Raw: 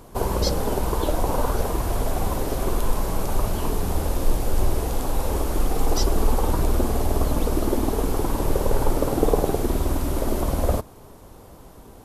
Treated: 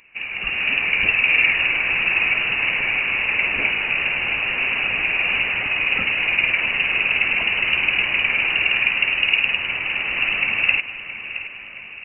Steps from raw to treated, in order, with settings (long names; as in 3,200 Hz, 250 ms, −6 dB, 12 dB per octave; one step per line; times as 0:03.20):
high-pass filter 620 Hz 24 dB per octave
automatic gain control gain up to 14 dB
repeating echo 670 ms, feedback 49%, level −12.5 dB
voice inversion scrambler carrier 3,300 Hz